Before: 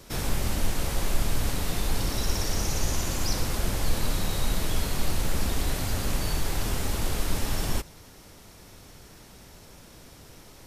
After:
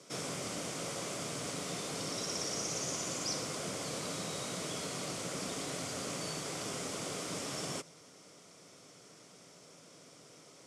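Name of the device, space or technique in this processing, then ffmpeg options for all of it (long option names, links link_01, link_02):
television speaker: -af "highpass=frequency=170:width=0.5412,highpass=frequency=170:width=1.3066,equalizer=frequency=220:width_type=q:width=4:gain=-10,equalizer=frequency=350:width_type=q:width=4:gain=-5,equalizer=frequency=870:width_type=q:width=4:gain=-10,equalizer=frequency=1700:width_type=q:width=4:gain=-9,equalizer=frequency=2700:width_type=q:width=4:gain=-5,equalizer=frequency=4000:width_type=q:width=4:gain=-7,lowpass=frequency=8800:width=0.5412,lowpass=frequency=8800:width=1.3066,volume=-2dB"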